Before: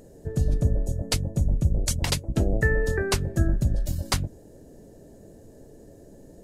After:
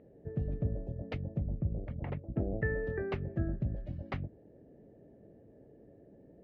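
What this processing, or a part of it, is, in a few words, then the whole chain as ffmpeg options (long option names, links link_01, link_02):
bass cabinet: -filter_complex "[0:a]asettb=1/sr,asplit=3[link_01][link_02][link_03];[link_01]atrim=end=1.444[link_04];[link_02]atrim=start=1.44:end=2.52,asetpts=PTS-STARTPTS,afade=type=in:duration=0.004:curve=qsin,afade=type=out:start_time=1.076:duration=0.004:curve=qsin,lowpass=1500[link_05];[link_03]atrim=start=2.516[link_06];[link_04][link_05]acrossfade=duration=0.004:curve1=hsin:curve2=qsin[link_07];[link_07][link_06]acrossfade=duration=0.004:curve1=qsin:curve2=hsin,highpass=62,equalizer=frequency=77:width_type=q:width=4:gain=-5,equalizer=frequency=1000:width_type=q:width=4:gain=-8,equalizer=frequency=1500:width_type=q:width=4:gain=-7,lowpass=frequency=2300:width=0.5412,lowpass=frequency=2300:width=1.3066,volume=-8dB"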